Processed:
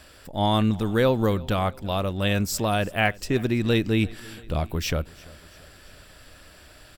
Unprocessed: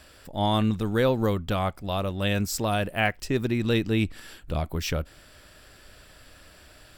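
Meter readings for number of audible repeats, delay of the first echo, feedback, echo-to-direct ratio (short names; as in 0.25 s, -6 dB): 3, 0.339 s, 54%, -21.0 dB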